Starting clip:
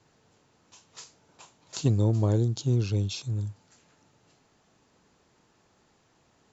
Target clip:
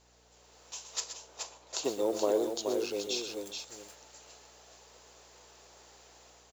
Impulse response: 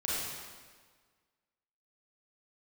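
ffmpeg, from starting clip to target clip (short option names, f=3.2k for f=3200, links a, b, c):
-filter_complex "[0:a]acrusher=bits=8:mode=log:mix=0:aa=0.000001,acontrast=61,asettb=1/sr,asplit=3[a][b][c];[a]atrim=end=1.004[d];[b]atrim=start=1:end=3.46,asetpts=PTS-STARTPTS,afade=t=in:d=0.004:c=qsin,afade=t=out:st=2.456:d=0.004:c=qsin,highshelf=f=2.4k:g=-10.5[e];[c]atrim=start=3.456[f];[d][e]acrossfade=d=0.004:c1=hsin:c2=qsin[g];[g][f]acrossfade=d=0.004:c1=qsin:c2=hsin,dynaudnorm=f=300:g=3:m=8dB,highpass=f=480:w=0.5412,highpass=f=480:w=1.3066,equalizer=f=1.4k:t=o:w=2.5:g=-9,aecho=1:1:117|127|426:0.211|0.251|0.501,aeval=exprs='val(0)+0.000447*(sin(2*PI*60*n/s)+sin(2*PI*2*60*n/s)/2+sin(2*PI*3*60*n/s)/3+sin(2*PI*4*60*n/s)/4+sin(2*PI*5*60*n/s)/5)':c=same"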